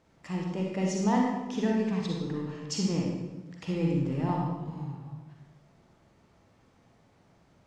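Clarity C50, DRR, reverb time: -0.5 dB, -1.5 dB, 1.1 s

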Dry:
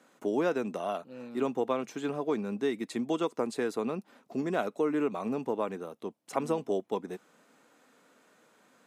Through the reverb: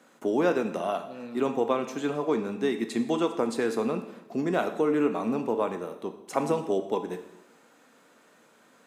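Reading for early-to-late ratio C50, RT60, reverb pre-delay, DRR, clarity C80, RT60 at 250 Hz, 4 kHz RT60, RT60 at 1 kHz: 10.0 dB, 0.95 s, 6 ms, 7.0 dB, 12.5 dB, 0.85 s, 0.85 s, 0.90 s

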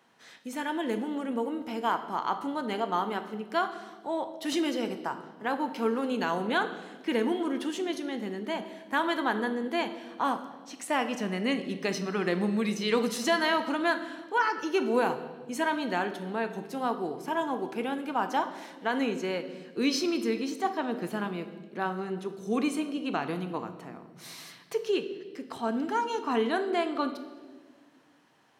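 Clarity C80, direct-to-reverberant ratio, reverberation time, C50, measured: 12.5 dB, 8.0 dB, 1.6 s, 11.0 dB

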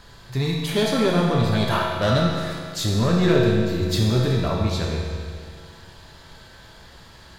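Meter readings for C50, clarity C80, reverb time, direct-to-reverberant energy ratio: 0.5 dB, 2.0 dB, 2.1 s, -2.5 dB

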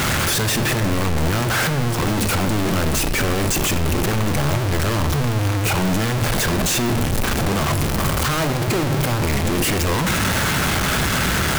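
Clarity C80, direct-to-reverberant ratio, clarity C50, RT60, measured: 13.0 dB, 9.0 dB, 11.5 dB, 1.5 s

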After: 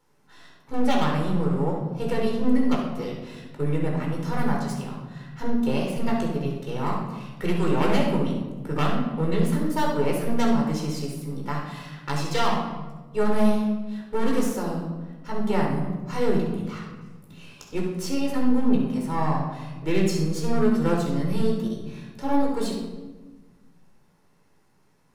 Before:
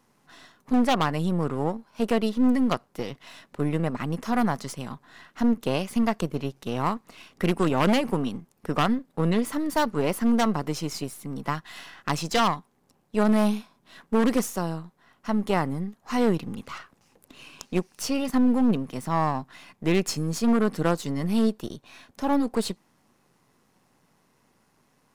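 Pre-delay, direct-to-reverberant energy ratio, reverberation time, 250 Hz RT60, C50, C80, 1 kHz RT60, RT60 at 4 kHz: 14 ms, -1.5 dB, 1.3 s, 2.1 s, 2.0 dB, 5.5 dB, 1.1 s, 0.80 s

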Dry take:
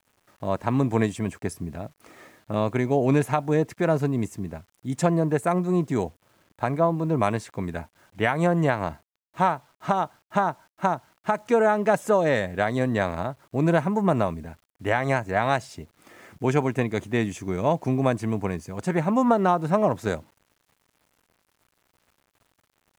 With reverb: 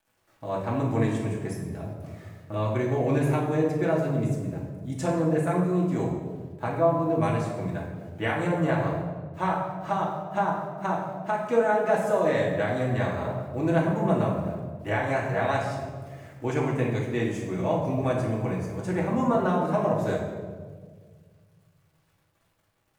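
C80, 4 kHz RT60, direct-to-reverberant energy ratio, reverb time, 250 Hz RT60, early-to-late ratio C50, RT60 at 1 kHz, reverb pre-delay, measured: 5.5 dB, 1.0 s, -5.0 dB, 1.7 s, 2.3 s, 3.0 dB, 1.4 s, 3 ms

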